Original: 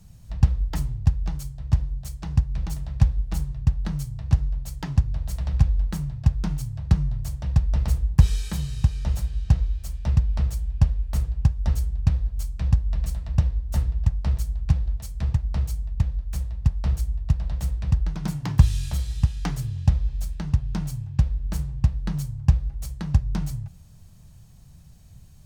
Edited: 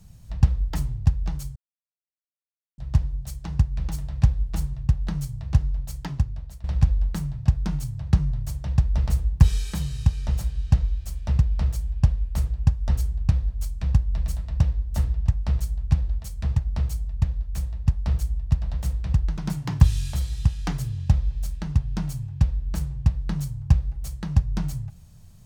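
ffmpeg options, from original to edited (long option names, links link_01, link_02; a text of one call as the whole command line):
ffmpeg -i in.wav -filter_complex "[0:a]asplit=3[link_01][link_02][link_03];[link_01]atrim=end=1.56,asetpts=PTS-STARTPTS,afade=type=out:start_time=1.556:duration=0.004:curve=hsin,apad=pad_dur=1.22[link_04];[link_02]atrim=start=1.56:end=5.42,asetpts=PTS-STARTPTS,afade=type=in:duration=0.004:curve=hsin,afade=type=out:start_time=3.2:duration=0.66:silence=0.125893[link_05];[link_03]atrim=start=5.42,asetpts=PTS-STARTPTS,afade=type=in:duration=0.004:curve=hsin:silence=0.125893[link_06];[link_04][link_05][link_06]concat=n=3:v=0:a=1" out.wav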